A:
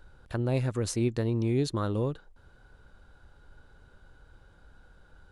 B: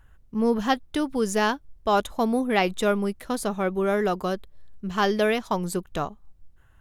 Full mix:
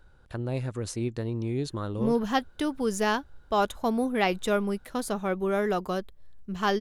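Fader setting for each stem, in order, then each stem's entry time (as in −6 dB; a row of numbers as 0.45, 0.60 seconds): −3.0, −3.0 decibels; 0.00, 1.65 seconds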